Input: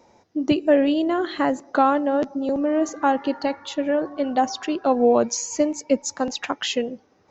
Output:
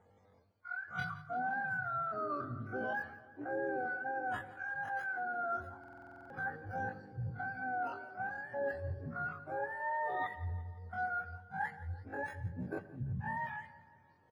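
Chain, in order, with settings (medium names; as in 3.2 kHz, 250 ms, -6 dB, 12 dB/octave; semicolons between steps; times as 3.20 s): spectrum inverted on a logarithmic axis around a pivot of 660 Hz; treble shelf 3.3 kHz +5 dB; reverse; compression 4:1, threshold -28 dBFS, peak gain reduction 12.5 dB; reverse; hum notches 50/100/150/200 Hz; tempo 0.51×; feedback delay 171 ms, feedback 60%, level -18 dB; on a send at -20 dB: reverberation RT60 0.55 s, pre-delay 86 ms; on the sum: buffer glitch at 5.79 s, samples 2048, times 10; tape noise reduction on one side only decoder only; trim -8 dB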